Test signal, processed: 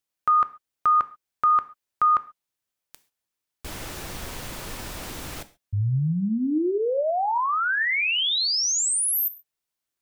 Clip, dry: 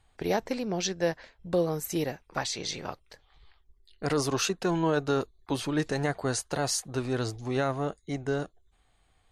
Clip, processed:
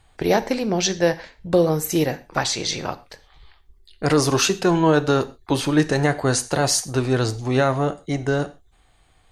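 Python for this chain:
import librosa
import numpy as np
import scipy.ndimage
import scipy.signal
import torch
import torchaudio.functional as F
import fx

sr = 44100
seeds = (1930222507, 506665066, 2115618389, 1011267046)

y = fx.rev_gated(x, sr, seeds[0], gate_ms=160, shape='falling', drr_db=12.0)
y = y * librosa.db_to_amplitude(9.0)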